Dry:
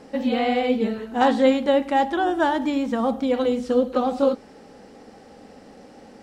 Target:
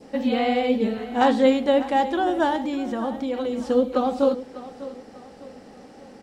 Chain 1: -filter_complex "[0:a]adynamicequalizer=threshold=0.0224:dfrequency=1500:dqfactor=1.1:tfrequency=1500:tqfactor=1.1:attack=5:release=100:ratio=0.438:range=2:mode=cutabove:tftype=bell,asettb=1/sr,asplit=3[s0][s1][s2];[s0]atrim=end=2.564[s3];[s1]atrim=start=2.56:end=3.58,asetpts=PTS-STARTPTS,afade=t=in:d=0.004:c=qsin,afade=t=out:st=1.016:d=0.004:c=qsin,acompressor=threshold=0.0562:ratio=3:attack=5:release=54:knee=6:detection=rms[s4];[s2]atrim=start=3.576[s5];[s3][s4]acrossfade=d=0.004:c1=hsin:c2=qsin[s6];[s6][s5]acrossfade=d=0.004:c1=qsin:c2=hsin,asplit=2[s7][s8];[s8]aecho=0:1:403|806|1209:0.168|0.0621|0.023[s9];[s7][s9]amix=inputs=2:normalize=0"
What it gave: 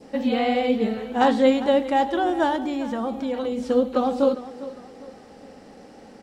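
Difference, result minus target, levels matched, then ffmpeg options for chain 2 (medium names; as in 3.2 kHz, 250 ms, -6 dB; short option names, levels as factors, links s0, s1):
echo 195 ms early
-filter_complex "[0:a]adynamicequalizer=threshold=0.0224:dfrequency=1500:dqfactor=1.1:tfrequency=1500:tqfactor=1.1:attack=5:release=100:ratio=0.438:range=2:mode=cutabove:tftype=bell,asettb=1/sr,asplit=3[s0][s1][s2];[s0]atrim=end=2.564[s3];[s1]atrim=start=2.56:end=3.58,asetpts=PTS-STARTPTS,afade=t=in:d=0.004:c=qsin,afade=t=out:st=1.016:d=0.004:c=qsin,acompressor=threshold=0.0562:ratio=3:attack=5:release=54:knee=6:detection=rms[s4];[s2]atrim=start=3.576[s5];[s3][s4]acrossfade=d=0.004:c1=hsin:c2=qsin[s6];[s6][s5]acrossfade=d=0.004:c1=qsin:c2=hsin,asplit=2[s7][s8];[s8]aecho=0:1:598|1196|1794:0.168|0.0621|0.023[s9];[s7][s9]amix=inputs=2:normalize=0"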